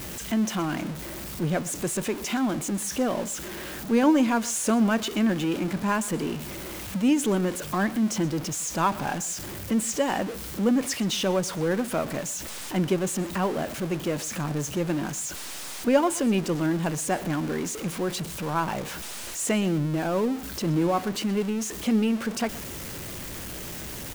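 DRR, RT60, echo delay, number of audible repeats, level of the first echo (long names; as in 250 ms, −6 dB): no reverb audible, no reverb audible, 124 ms, 1, −19.5 dB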